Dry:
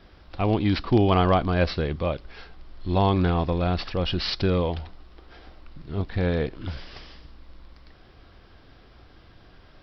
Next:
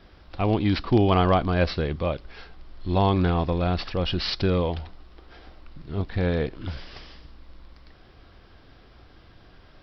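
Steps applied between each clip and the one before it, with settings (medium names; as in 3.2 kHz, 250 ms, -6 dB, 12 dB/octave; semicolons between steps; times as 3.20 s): no audible change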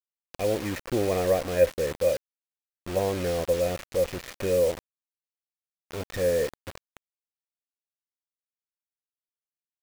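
in parallel at -11 dB: saturation -20 dBFS, distortion -10 dB; on the sum: cascade formant filter e; bit crusher 7-bit; trim +7 dB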